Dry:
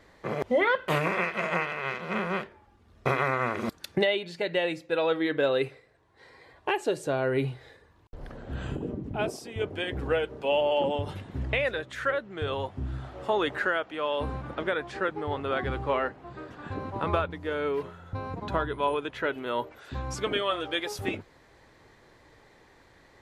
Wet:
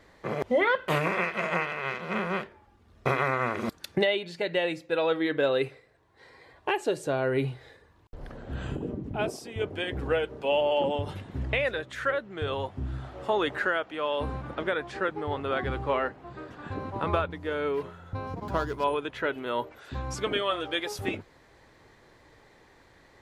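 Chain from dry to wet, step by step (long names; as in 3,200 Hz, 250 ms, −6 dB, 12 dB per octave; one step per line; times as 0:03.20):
0:18.27–0:18.84: running median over 15 samples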